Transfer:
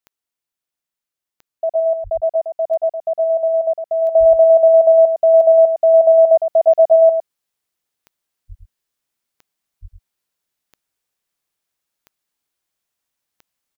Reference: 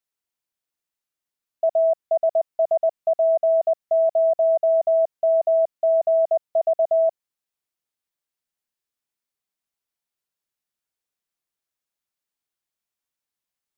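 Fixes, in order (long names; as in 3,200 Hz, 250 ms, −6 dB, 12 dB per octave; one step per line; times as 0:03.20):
click removal
high-pass at the plosives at 0:02.03/0:04.19/0:08.48/0:09.81
echo removal 107 ms −6.5 dB
level correction −7 dB, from 0:04.11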